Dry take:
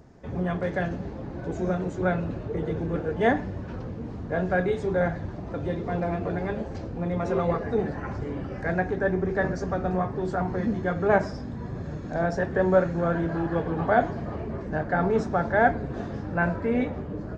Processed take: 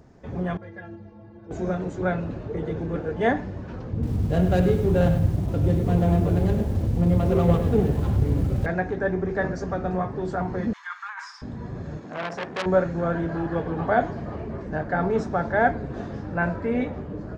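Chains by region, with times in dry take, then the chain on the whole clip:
0:00.57–0:01.51: high-frequency loss of the air 140 metres + stiff-string resonator 100 Hz, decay 0.35 s, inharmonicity 0.03
0:03.93–0:08.66: running median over 25 samples + parametric band 77 Hz +14 dB 2.9 octaves + feedback echo at a low word length 99 ms, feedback 35%, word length 7 bits, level −9 dB
0:10.73–0:11.42: Butterworth high-pass 950 Hz 72 dB per octave + compressor whose output falls as the input rises −34 dBFS
0:11.99–0:12.66: high-pass filter 170 Hz + saturating transformer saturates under 2,900 Hz
whole clip: no processing

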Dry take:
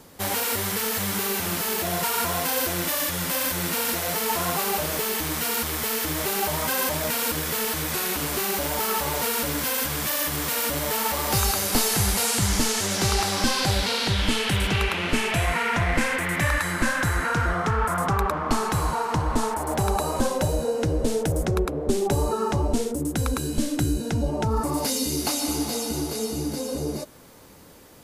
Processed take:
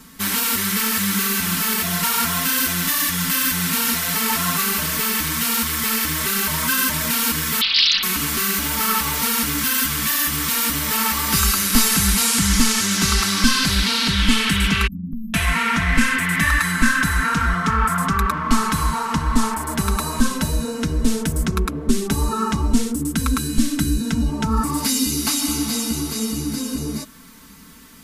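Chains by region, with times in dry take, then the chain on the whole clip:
0:07.61–0:08.03: spectral tilt −3.5 dB per octave + voice inversion scrambler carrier 3,900 Hz + highs frequency-modulated by the lows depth 0.6 ms
0:14.87–0:15.34: linear-phase brick-wall band-stop 290–13,000 Hz + downward compressor, threshold −31 dBFS
whole clip: flat-topped bell 580 Hz −13.5 dB 1.3 octaves; comb filter 4.5 ms, depth 79%; level +4 dB

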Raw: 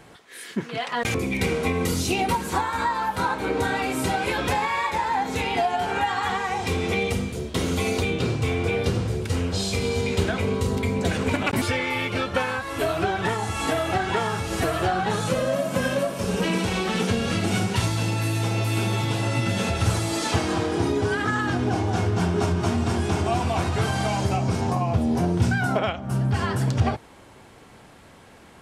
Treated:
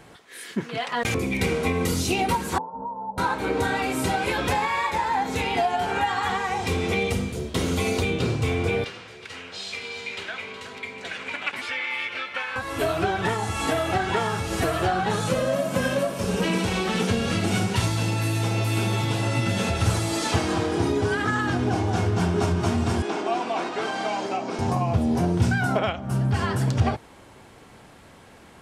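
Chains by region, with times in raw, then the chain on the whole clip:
0:02.58–0:03.18: Chebyshev low-pass with heavy ripple 1,300 Hz, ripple 6 dB + phaser with its sweep stopped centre 330 Hz, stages 6
0:08.84–0:12.56: resonant band-pass 2,300 Hz, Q 1.1 + single-tap delay 368 ms −11.5 dB
0:23.02–0:24.59: high-pass filter 260 Hz 24 dB per octave + high-frequency loss of the air 84 metres
whole clip: no processing

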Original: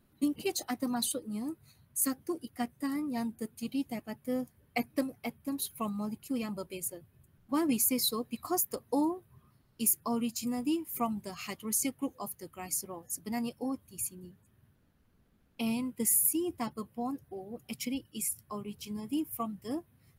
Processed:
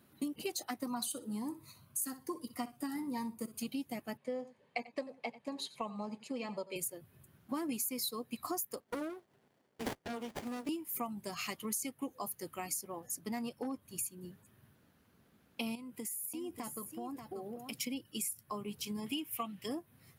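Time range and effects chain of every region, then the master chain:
0:00.87–0:03.60: parametric band 1,000 Hz +10.5 dB 0.44 octaves + flutter between parallel walls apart 10.5 metres, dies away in 0.23 s + phaser whose notches keep moving one way rising 1.2 Hz
0:04.17–0:06.76: loudspeaker in its box 250–6,400 Hz, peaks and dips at 310 Hz −9 dB, 530 Hz +3 dB, 900 Hz +3 dB, 1,400 Hz −9 dB, 3,300 Hz −3 dB, 5,600 Hz −9 dB + single-tap delay 89 ms −19 dB
0:08.80–0:10.69: high-pass filter 390 Hz + windowed peak hold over 33 samples
0:13.00–0:13.96: high-shelf EQ 6,000 Hz −5 dB + hard clipping −29 dBFS
0:15.75–0:17.79: downward compressor 5 to 1, threshold −43 dBFS + single-tap delay 585 ms −8.5 dB
0:19.06–0:19.66: high-pass filter 50 Hz + parametric band 2,800 Hz +14.5 dB 1.3 octaves
whole clip: high-pass filter 100 Hz; low-shelf EQ 350 Hz −4.5 dB; downward compressor 4 to 1, threshold −43 dBFS; level +6 dB

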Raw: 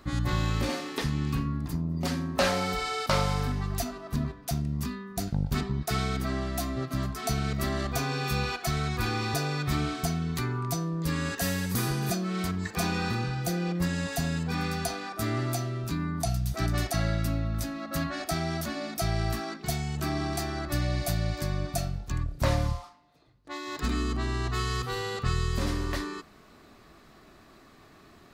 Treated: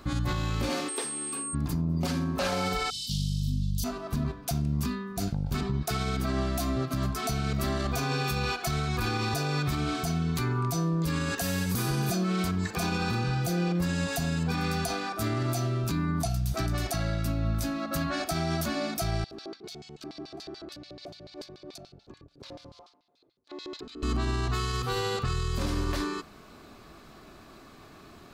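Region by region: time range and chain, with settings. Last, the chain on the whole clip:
0:00.88–0:01.53: steady tone 8,500 Hz −30 dBFS + four-pole ladder high-pass 300 Hz, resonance 30%
0:02.90–0:03.84: Chebyshev band-stop filter 240–3,100 Hz, order 5 + double-tracking delay 40 ms −3 dB
0:19.24–0:24.03: downward compressor, threshold −31 dBFS + auto-filter band-pass square 6.9 Hz 400–4,100 Hz
whole clip: notch filter 1,900 Hz, Q 9.2; brickwall limiter −24 dBFS; level +4 dB

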